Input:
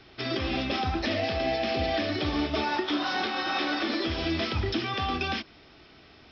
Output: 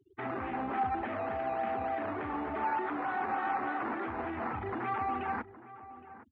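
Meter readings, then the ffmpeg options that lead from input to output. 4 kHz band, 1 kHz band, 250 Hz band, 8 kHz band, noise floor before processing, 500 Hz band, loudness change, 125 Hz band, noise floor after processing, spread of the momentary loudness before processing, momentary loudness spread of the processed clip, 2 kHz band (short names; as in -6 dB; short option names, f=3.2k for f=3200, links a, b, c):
under -25 dB, 0.0 dB, -8.5 dB, n/a, -54 dBFS, -7.0 dB, -6.0 dB, -12.5 dB, -53 dBFS, 2 LU, 7 LU, -7.5 dB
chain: -filter_complex "[0:a]afftfilt=real='re*gte(hypot(re,im),0.0112)':imag='im*gte(hypot(re,im),0.0112)':win_size=1024:overlap=0.75,alimiter=level_in=3.5dB:limit=-24dB:level=0:latency=1:release=16,volume=-3.5dB,acrusher=samples=11:mix=1:aa=0.000001:lfo=1:lforange=6.6:lforate=3.4,highpass=130,equalizer=f=160:t=q:w=4:g=-10,equalizer=f=320:t=q:w=4:g=-4,equalizer=f=570:t=q:w=4:g=-6,equalizer=f=820:t=q:w=4:g=8,equalizer=f=1.2k:t=q:w=4:g=3,lowpass=f=2k:w=0.5412,lowpass=f=2k:w=1.3066,asplit=2[a][b];[b]adelay=816.3,volume=-15dB,highshelf=f=4k:g=-18.4[c];[a][c]amix=inputs=2:normalize=0,volume=1dB"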